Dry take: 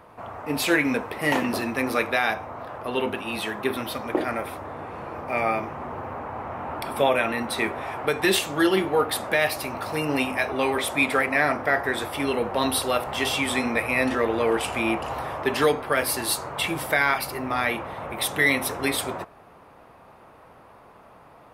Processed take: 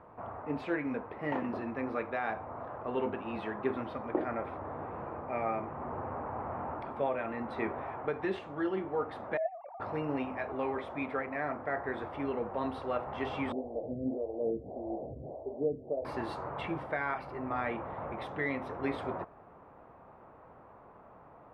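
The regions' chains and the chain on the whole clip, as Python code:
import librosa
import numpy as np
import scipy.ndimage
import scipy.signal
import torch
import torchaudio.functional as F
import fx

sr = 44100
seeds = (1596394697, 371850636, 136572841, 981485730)

y = fx.chain(x, sr, fx.sine_speech(),
    fx.cheby1_lowpass(hz=670.0, order=2),
    fx.notch(hz=620.0, q=19.0), at=(9.37, 9.8))
y = fx.chain(y, sr, fx.steep_lowpass(hz=690.0, slope=48),
    fx.stagger_phaser(hz=1.7), at=(13.52, 16.05))
y = scipy.signal.sosfilt(scipy.signal.butter(2, 1400.0, 'lowpass', fs=sr, output='sos'), y)
y = fx.rider(y, sr, range_db=4, speed_s=0.5)
y = y * librosa.db_to_amplitude(-8.0)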